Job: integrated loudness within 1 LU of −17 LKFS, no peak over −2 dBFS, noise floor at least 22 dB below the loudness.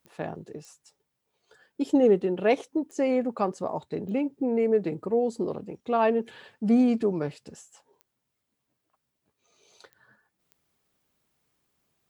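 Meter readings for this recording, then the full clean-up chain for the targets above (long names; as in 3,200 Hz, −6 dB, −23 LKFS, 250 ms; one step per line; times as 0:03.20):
number of clicks 7; integrated loudness −26.5 LKFS; sample peak −10.0 dBFS; target loudness −17.0 LKFS
→ click removal
level +9.5 dB
brickwall limiter −2 dBFS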